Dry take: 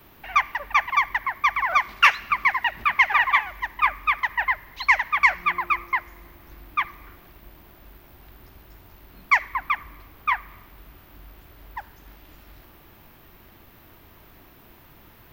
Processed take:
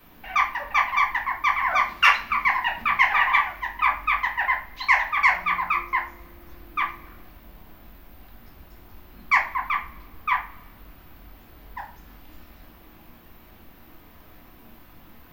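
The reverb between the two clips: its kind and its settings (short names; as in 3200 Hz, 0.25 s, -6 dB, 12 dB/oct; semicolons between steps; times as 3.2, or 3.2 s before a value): shoebox room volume 280 m³, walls furnished, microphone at 2 m; gain -3.5 dB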